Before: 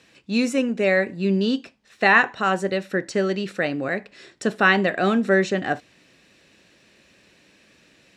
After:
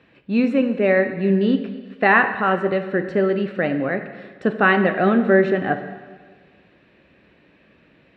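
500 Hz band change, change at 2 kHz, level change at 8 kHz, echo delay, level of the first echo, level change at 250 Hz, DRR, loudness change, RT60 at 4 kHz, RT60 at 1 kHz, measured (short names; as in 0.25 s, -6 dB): +3.5 dB, +0.5 dB, under -20 dB, none, none, +3.5 dB, 8.0 dB, +2.5 dB, 1.4 s, 1.5 s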